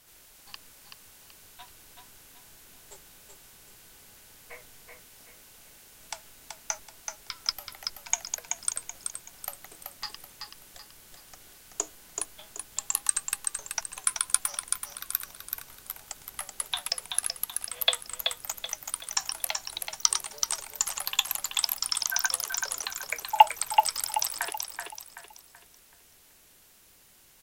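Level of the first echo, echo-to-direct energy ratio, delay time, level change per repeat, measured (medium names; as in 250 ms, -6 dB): -5.0 dB, -4.5 dB, 380 ms, -8.5 dB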